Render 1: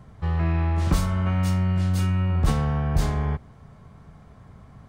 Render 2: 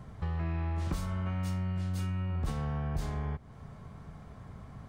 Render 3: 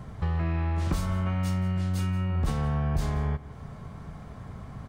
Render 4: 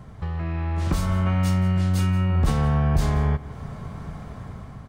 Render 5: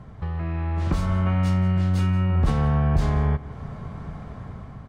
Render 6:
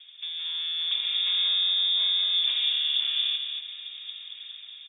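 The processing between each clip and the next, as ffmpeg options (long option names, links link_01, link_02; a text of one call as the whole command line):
ffmpeg -i in.wav -af "acompressor=threshold=-34dB:ratio=3" out.wav
ffmpeg -i in.wav -af "aecho=1:1:178:0.141,volume=6dB" out.wav
ffmpeg -i in.wav -af "dynaudnorm=framelen=340:gausssize=5:maxgain=8dB,volume=-1.5dB" out.wav
ffmpeg -i in.wav -af "aemphasis=mode=reproduction:type=50kf" out.wav
ffmpeg -i in.wav -af "aeval=exprs='val(0)*sin(2*PI*210*n/s)':channel_layout=same,aecho=1:1:229|458|687|916:0.501|0.15|0.0451|0.0135,lowpass=frequency=3100:width_type=q:width=0.5098,lowpass=frequency=3100:width_type=q:width=0.6013,lowpass=frequency=3100:width_type=q:width=0.9,lowpass=frequency=3100:width_type=q:width=2.563,afreqshift=-3700,volume=-4dB" out.wav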